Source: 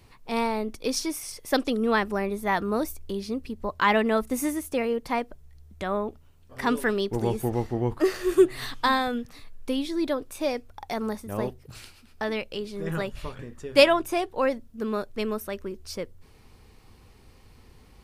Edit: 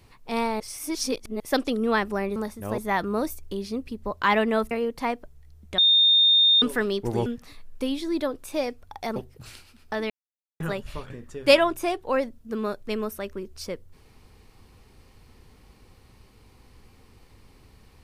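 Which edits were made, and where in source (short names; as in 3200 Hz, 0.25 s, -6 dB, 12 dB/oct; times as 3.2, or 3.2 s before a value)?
0.6–1.4 reverse
4.29–4.79 cut
5.86–6.7 bleep 3650 Hz -14.5 dBFS
7.34–9.13 cut
11.03–11.45 move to 2.36
12.39–12.89 mute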